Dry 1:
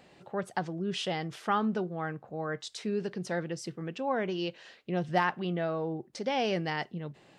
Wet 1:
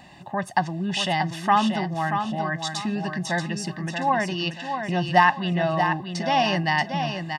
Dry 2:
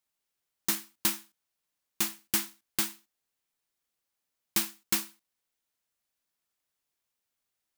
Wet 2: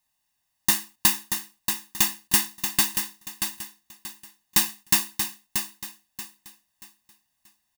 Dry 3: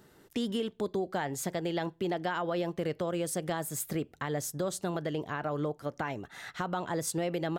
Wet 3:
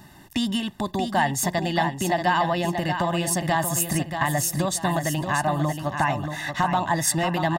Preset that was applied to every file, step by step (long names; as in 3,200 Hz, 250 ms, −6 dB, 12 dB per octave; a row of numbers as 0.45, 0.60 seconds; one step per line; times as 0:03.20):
comb filter 1.1 ms, depth 98%
dynamic equaliser 230 Hz, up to −4 dB, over −40 dBFS, Q 0.86
on a send: repeating echo 632 ms, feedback 31%, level −7 dB
on the sum: loudness normalisation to −24 LKFS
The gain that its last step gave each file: +7.0, +5.0, +9.0 decibels